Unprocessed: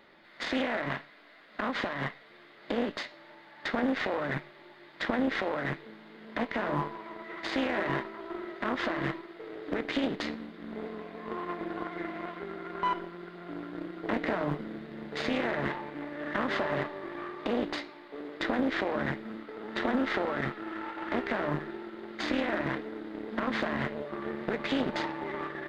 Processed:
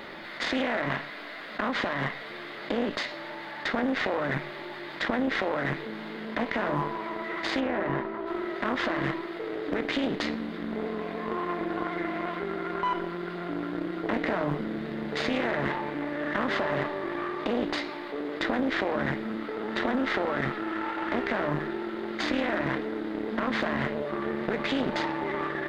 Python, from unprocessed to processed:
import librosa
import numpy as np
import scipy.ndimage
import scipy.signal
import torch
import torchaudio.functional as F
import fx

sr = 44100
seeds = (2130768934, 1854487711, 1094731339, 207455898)

y = fx.lowpass(x, sr, hz=1200.0, slope=6, at=(7.59, 8.26), fade=0.02)
y = fx.env_flatten(y, sr, amount_pct=50)